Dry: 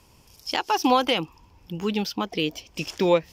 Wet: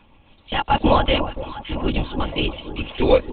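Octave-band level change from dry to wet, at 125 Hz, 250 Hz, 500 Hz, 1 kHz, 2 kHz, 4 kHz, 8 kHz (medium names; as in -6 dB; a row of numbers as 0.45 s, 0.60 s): +9.0 dB, +2.5 dB, +4.0 dB, +3.0 dB, +3.0 dB, +2.0 dB, under -40 dB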